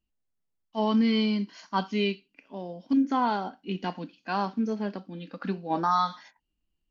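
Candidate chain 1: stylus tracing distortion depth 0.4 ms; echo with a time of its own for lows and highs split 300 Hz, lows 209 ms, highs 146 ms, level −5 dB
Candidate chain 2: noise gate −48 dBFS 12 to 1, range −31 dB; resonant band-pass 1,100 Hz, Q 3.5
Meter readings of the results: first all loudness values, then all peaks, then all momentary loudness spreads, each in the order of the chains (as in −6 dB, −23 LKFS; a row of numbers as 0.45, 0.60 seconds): −27.5, −35.0 LKFS; −9.5, −17.5 dBFS; 13, 21 LU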